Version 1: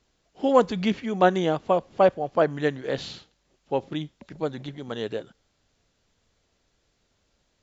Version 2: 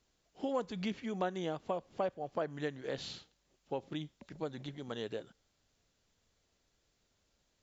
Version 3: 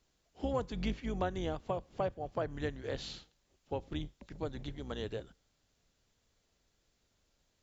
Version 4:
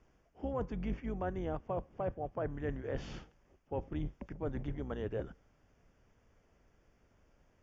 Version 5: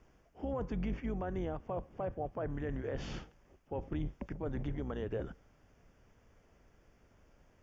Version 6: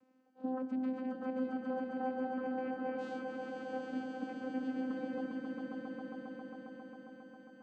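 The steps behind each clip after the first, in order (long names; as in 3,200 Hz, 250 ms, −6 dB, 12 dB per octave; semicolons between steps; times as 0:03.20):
high-shelf EQ 5,600 Hz +5.5 dB; downward compressor 2.5 to 1, threshold −28 dBFS, peak gain reduction 11 dB; level −7.5 dB
sub-octave generator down 2 octaves, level 0 dB
reversed playback; downward compressor 5 to 1, threshold −44 dBFS, peak gain reduction 14 dB; reversed playback; moving average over 11 samples; level +9.5 dB
brickwall limiter −32 dBFS, peak gain reduction 7.5 dB; level +3.5 dB
channel vocoder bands 8, saw 258 Hz; echo that builds up and dies away 135 ms, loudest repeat 5, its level −5 dB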